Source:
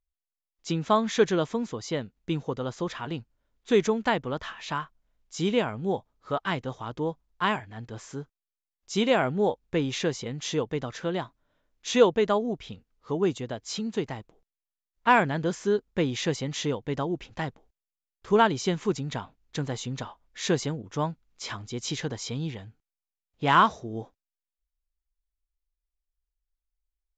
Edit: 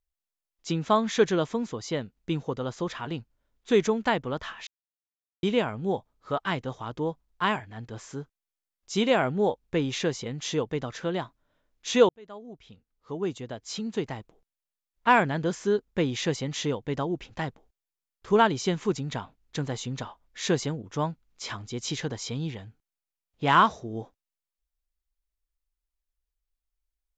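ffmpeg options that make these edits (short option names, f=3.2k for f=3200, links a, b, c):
-filter_complex "[0:a]asplit=4[a][b][c][d];[a]atrim=end=4.67,asetpts=PTS-STARTPTS,afade=t=out:st=4.666:d=0.004:c=hsin[e];[b]atrim=start=4.67:end=5.43,asetpts=PTS-STARTPTS,volume=0[f];[c]atrim=start=5.43:end=12.09,asetpts=PTS-STARTPTS,afade=t=in:d=0.004:c=hsin,afade=t=out:st=6.656:d=0.004:c=hsin[g];[d]atrim=start=12.09,asetpts=PTS-STARTPTS,afade=t=in:d=2.03[h];[e][f][g][h]concat=n=4:v=0:a=1"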